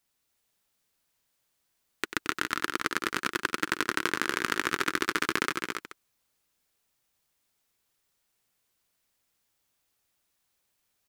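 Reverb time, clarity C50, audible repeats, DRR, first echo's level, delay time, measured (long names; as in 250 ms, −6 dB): no reverb audible, no reverb audible, 4, no reverb audible, −10.5 dB, 93 ms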